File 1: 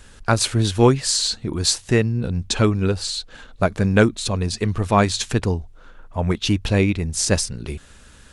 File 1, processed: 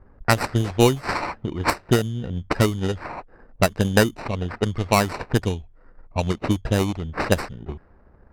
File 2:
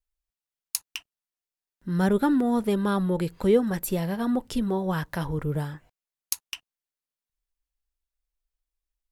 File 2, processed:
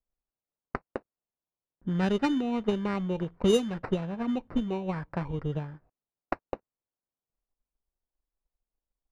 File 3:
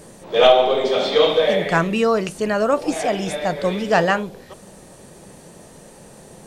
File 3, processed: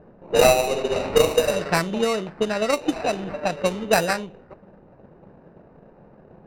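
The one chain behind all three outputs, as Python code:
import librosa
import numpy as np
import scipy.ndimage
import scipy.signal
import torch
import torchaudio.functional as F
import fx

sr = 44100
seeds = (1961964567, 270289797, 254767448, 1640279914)

y = fx.sample_hold(x, sr, seeds[0], rate_hz=3300.0, jitter_pct=0)
y = fx.transient(y, sr, attack_db=8, sustain_db=0)
y = fx.env_lowpass(y, sr, base_hz=900.0, full_db=-9.0)
y = y * librosa.db_to_amplitude(-6.0)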